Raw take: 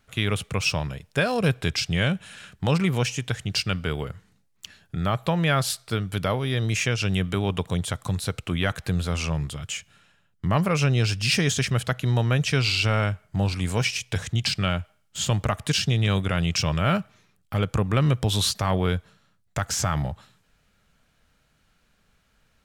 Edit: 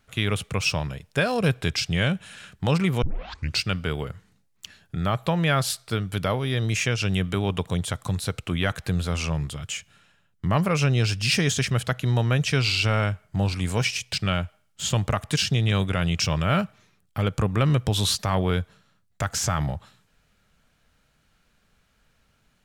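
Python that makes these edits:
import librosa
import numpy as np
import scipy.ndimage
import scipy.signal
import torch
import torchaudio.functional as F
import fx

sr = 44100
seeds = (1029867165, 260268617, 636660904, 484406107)

y = fx.edit(x, sr, fx.tape_start(start_s=3.02, length_s=0.59),
    fx.cut(start_s=14.13, length_s=0.36), tone=tone)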